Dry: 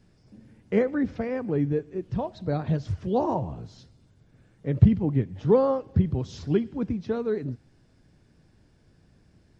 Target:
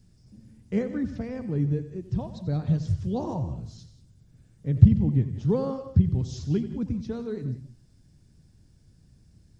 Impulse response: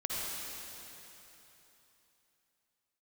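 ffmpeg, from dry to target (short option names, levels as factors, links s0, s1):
-filter_complex "[0:a]bass=f=250:g=13,treble=f=4000:g=15,asplit=2[s0][s1];[1:a]atrim=start_sample=2205,afade=t=out:st=0.16:d=0.01,atrim=end_sample=7497,adelay=89[s2];[s1][s2]afir=irnorm=-1:irlink=0,volume=0.266[s3];[s0][s3]amix=inputs=2:normalize=0,volume=0.355"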